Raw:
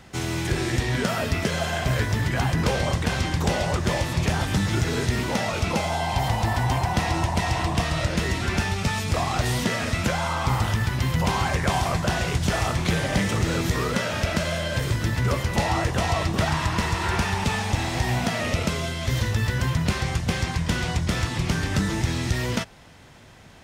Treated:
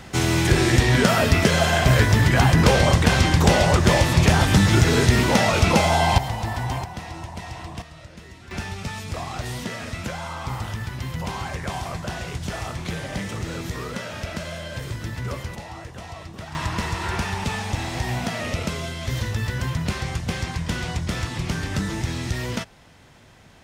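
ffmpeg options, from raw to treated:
-af "asetnsamples=n=441:p=0,asendcmd='6.18 volume volume -3.5dB;6.84 volume volume -11dB;7.82 volume volume -18.5dB;8.51 volume volume -6.5dB;15.55 volume volume -14dB;16.55 volume volume -2dB',volume=7dB"

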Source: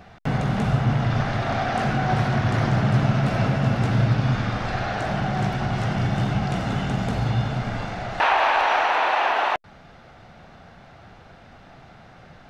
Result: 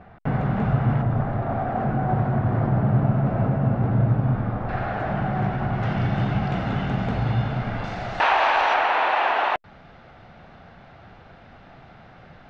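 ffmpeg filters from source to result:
-af "asetnsamples=n=441:p=0,asendcmd='1.02 lowpass f 1000;4.69 lowpass f 1800;5.83 lowpass f 3000;7.84 lowpass f 6400;8.74 lowpass f 3800',lowpass=1.7k"

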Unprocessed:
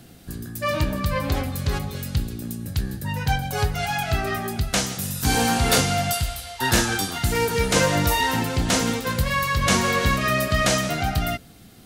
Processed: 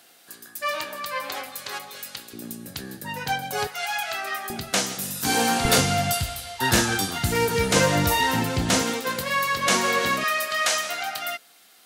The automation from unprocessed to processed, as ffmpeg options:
-af "asetnsamples=n=441:p=0,asendcmd='2.33 highpass f 280;3.67 highpass f 830;4.5 highpass f 230;5.65 highpass f 83;8.82 highpass f 290;10.24 highpass f 860',highpass=750"

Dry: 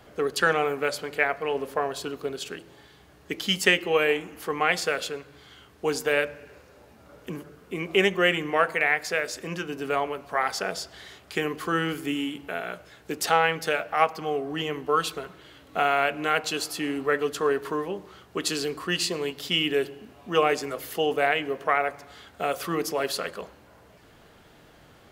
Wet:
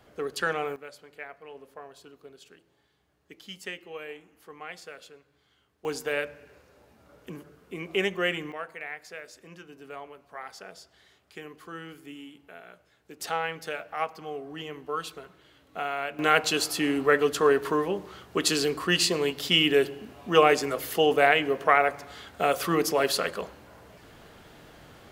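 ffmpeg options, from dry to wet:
-af "asetnsamples=n=441:p=0,asendcmd='0.76 volume volume -17.5dB;5.85 volume volume -5.5dB;8.52 volume volume -15dB;13.2 volume volume -8.5dB;16.19 volume volume 3dB',volume=-6dB"

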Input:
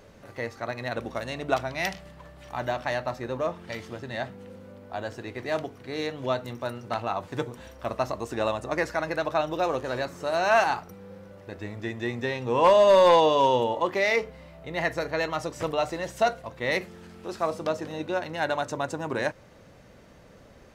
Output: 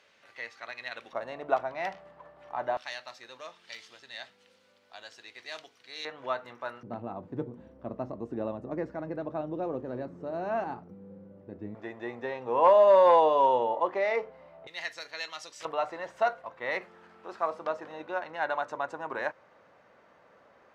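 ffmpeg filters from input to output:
-af "asetnsamples=n=441:p=0,asendcmd='1.13 bandpass f 820;2.77 bandpass f 4200;6.05 bandpass f 1300;6.83 bandpass f 240;11.75 bandpass f 790;14.67 bandpass f 4300;15.65 bandpass f 1100',bandpass=f=2.8k:t=q:w=1.1:csg=0"

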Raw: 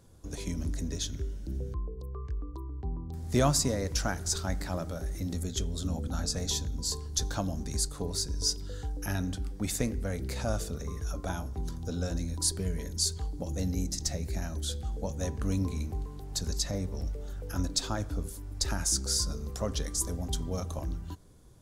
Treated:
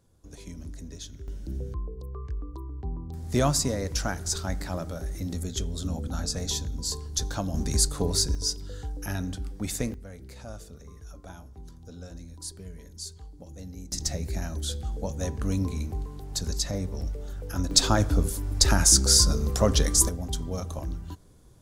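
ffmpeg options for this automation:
-af "asetnsamples=n=441:p=0,asendcmd='1.28 volume volume 1.5dB;7.54 volume volume 7.5dB;8.35 volume volume 0.5dB;9.94 volume volume -10dB;13.92 volume volume 2.5dB;17.71 volume volume 10.5dB;20.09 volume volume 1.5dB',volume=-7dB"

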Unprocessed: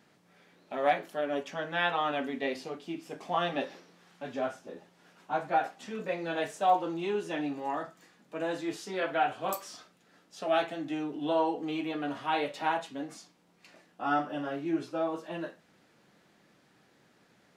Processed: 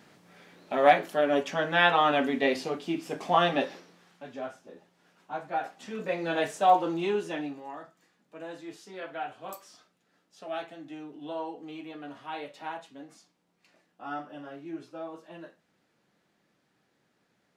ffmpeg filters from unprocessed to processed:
-af "volume=15.5dB,afade=t=out:st=3.35:d=0.92:silence=0.266073,afade=t=in:st=5.51:d=0.8:silence=0.375837,afade=t=out:st=7.05:d=0.61:silence=0.251189"

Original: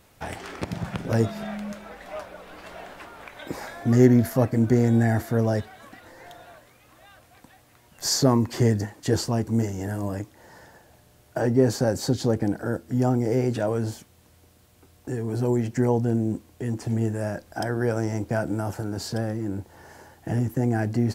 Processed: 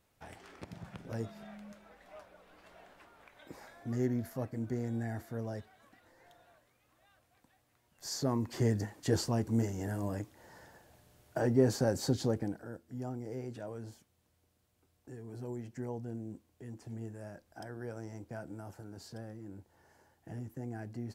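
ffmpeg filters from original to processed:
-af "volume=-7dB,afade=t=in:st=8.06:d=0.89:silence=0.334965,afade=t=out:st=12.18:d=0.49:silence=0.281838"

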